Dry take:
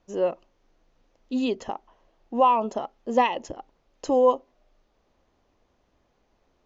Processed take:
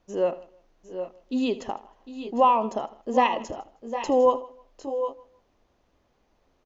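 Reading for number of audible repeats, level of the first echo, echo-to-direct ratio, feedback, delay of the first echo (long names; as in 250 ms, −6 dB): 5, −17.0 dB, −9.0 dB, repeats not evenly spaced, 78 ms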